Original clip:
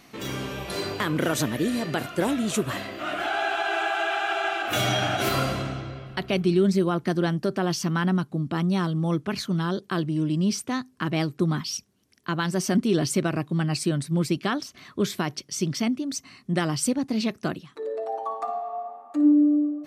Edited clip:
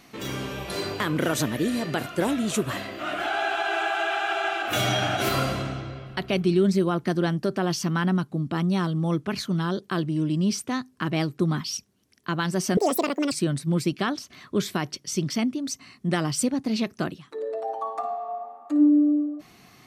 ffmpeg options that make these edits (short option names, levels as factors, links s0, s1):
-filter_complex "[0:a]asplit=3[s0][s1][s2];[s0]atrim=end=12.774[s3];[s1]atrim=start=12.77:end=13.76,asetpts=PTS-STARTPTS,asetrate=79821,aresample=44100[s4];[s2]atrim=start=13.756[s5];[s3][s4]acrossfade=d=0.004:c1=hsin:c2=hsin[s6];[s6][s5]acrossfade=d=0.004:c1=hsin:c2=hsin"